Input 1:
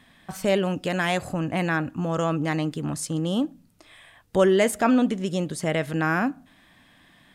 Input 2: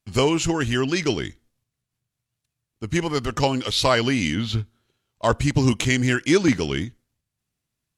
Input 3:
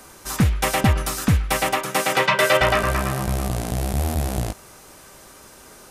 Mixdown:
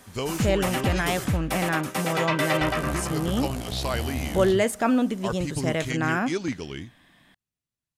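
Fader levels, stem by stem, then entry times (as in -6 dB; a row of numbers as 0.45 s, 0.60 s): -2.0 dB, -10.5 dB, -8.0 dB; 0.00 s, 0.00 s, 0.00 s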